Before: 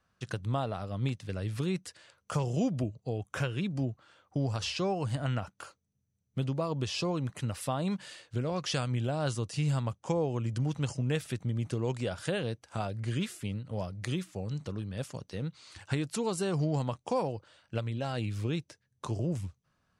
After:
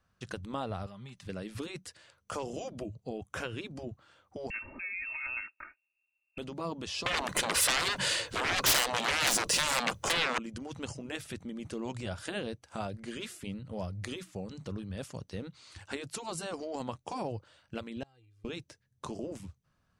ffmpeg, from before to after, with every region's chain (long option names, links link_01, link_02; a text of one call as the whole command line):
ffmpeg -i in.wav -filter_complex "[0:a]asettb=1/sr,asplit=3[link_01][link_02][link_03];[link_01]atrim=end=0.864[link_04];[link_02]atrim=start=0.86:end=1.26,asetpts=PTS-STARTPTS,afade=type=in:duration=0.004:curve=qsin,afade=type=out:start_time=0.396:duration=0.004:curve=qsin,lowshelf=frequency=680:width_type=q:width=1.5:gain=-6,aecho=1:1:5:0.72,atrim=end_sample=17640,acompressor=threshold=-45dB:ratio=4:attack=3.2:release=140:knee=1:detection=peak[link_05];[link_03]atrim=start=1.256[link_06];[link_04][link_05]acrossfade=duration=0.004:curve1=hsin:curve2=qsin[link_07];[link_07][link_06]acrossfade=duration=0.004:curve1=qsin:curve2=hsin,asettb=1/sr,asplit=3[link_08][link_09][link_10];[link_08]atrim=end=4.504[link_11];[link_09]atrim=start=4.5:end=6.38,asetpts=PTS-STARTPTS,afade=type=in:duration=0.004:curve=qsin,afade=type=out:start_time=1.876:duration=0.004:curve=qsin,aecho=1:1:3.2:0.87,atrim=end_sample=82908,acompressor=threshold=-34dB:ratio=2:attack=3.2:release=140:knee=1:detection=peak,lowpass=frequency=2400:width_type=q:width=0.5098,lowpass=frequency=2400:width_type=q:width=0.6013,lowpass=frequency=2400:width_type=q:width=0.9,lowpass=frequency=2400:width_type=q:width=2.563,afreqshift=-2800[link_12];[link_10]atrim=start=6.376[link_13];[link_11][link_12]acrossfade=duration=0.004:curve1=hsin:curve2=qsin[link_14];[link_14][link_13]acrossfade=duration=0.004:curve1=qsin:curve2=hsin,asettb=1/sr,asplit=3[link_15][link_16][link_17];[link_15]atrim=end=7.064[link_18];[link_16]atrim=start=7.06:end=10.38,asetpts=PTS-STARTPTS,afade=type=in:duration=0.004:curve=qsin,afade=type=out:start_time=3.316:duration=0.004:curve=qsin,aecho=1:1:2:0.34,atrim=end_sample=146412,aeval=exprs='0.126*sin(PI/2*6.31*val(0)/0.126)':channel_layout=same[link_19];[link_17]atrim=start=10.376[link_20];[link_18][link_19]acrossfade=duration=0.004:curve1=hsin:curve2=qsin[link_21];[link_21][link_20]acrossfade=duration=0.004:curve1=qsin:curve2=hsin,asettb=1/sr,asplit=3[link_22][link_23][link_24];[link_22]atrim=end=18.034[link_25];[link_23]atrim=start=18.03:end=18.45,asetpts=PTS-STARTPTS,afade=type=in:duration=0.004:curve=qsin,afade=type=out:start_time=0.416:duration=0.004:curve=qsin,agate=range=-32dB:threshold=-28dB:ratio=16:release=100:detection=peak,aecho=1:1:2.5:0.92,atrim=end_sample=18522[link_26];[link_24]atrim=start=18.446[link_27];[link_25][link_26]acrossfade=duration=0.004:curve1=hsin:curve2=qsin[link_28];[link_28][link_27]acrossfade=duration=0.004:curve1=qsin:curve2=hsin,lowshelf=frequency=110:gain=6.5,afftfilt=real='re*lt(hypot(re,im),0.2)':imag='im*lt(hypot(re,im),0.2)':win_size=1024:overlap=0.75,volume=-1.5dB" out.wav